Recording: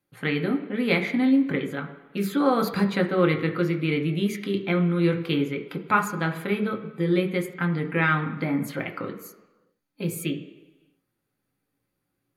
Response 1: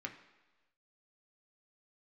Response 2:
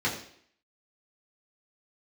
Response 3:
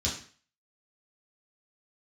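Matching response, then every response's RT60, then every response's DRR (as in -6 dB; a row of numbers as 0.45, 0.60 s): 1; 1.2, 0.60, 0.45 s; 2.5, -6.5, -7.0 dB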